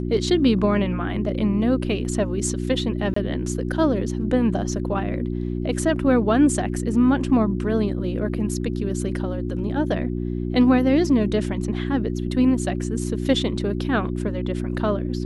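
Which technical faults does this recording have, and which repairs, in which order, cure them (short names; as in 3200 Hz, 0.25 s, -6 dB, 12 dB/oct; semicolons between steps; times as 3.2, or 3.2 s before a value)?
hum 60 Hz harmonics 6 -26 dBFS
3.14–3.16 gap 24 ms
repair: de-hum 60 Hz, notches 6; interpolate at 3.14, 24 ms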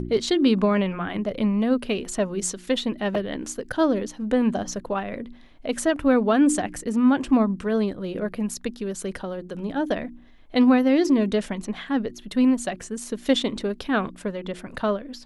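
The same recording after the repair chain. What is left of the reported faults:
none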